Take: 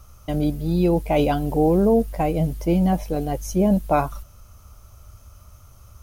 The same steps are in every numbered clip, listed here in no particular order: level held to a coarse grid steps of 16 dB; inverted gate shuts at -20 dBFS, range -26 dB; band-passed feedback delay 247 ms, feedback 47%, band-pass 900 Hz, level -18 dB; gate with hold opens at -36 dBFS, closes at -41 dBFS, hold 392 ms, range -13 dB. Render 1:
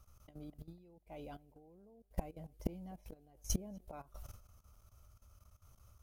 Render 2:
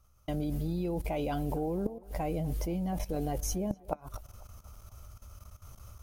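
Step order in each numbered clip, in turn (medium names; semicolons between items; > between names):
inverted gate > band-passed feedback delay > level held to a coarse grid > gate with hold; gate with hold > level held to a coarse grid > inverted gate > band-passed feedback delay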